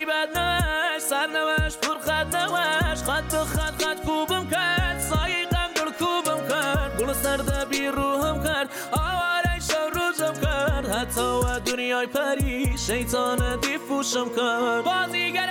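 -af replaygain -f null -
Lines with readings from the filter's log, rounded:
track_gain = +6.2 dB
track_peak = 0.139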